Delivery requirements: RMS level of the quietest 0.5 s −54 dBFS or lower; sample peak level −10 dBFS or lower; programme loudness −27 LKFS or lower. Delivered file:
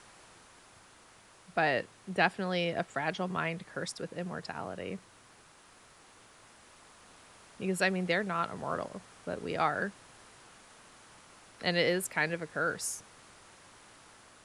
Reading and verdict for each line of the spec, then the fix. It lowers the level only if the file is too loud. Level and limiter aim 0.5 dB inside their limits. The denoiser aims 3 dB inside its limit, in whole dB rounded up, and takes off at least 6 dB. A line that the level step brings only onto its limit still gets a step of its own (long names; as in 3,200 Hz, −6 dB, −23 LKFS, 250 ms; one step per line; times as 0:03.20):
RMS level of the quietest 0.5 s −59 dBFS: in spec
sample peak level −11.0 dBFS: in spec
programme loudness −33.0 LKFS: in spec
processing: no processing needed